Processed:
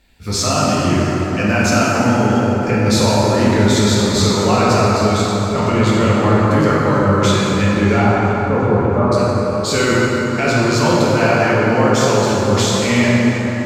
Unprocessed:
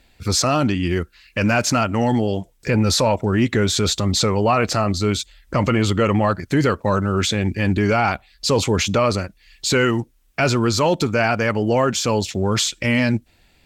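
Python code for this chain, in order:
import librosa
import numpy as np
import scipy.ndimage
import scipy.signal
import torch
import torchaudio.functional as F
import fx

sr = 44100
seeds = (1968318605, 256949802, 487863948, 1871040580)

y = fx.lowpass(x, sr, hz=1300.0, slope=24, at=(8.01, 9.12))
y = fx.echo_feedback(y, sr, ms=336, feedback_pct=57, wet_db=-18)
y = fx.rev_plate(y, sr, seeds[0], rt60_s=4.7, hf_ratio=0.45, predelay_ms=0, drr_db=-7.5)
y = y * librosa.db_to_amplitude(-3.5)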